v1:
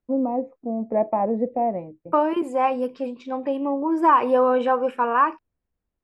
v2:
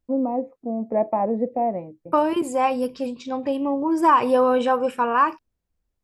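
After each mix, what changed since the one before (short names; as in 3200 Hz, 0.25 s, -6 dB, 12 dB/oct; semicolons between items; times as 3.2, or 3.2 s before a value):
second voice: remove three-band isolator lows -15 dB, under 200 Hz, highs -14 dB, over 2900 Hz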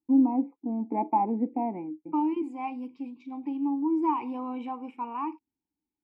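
first voice +10.0 dB; master: add vowel filter u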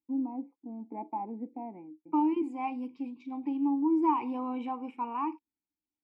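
first voice -11.0 dB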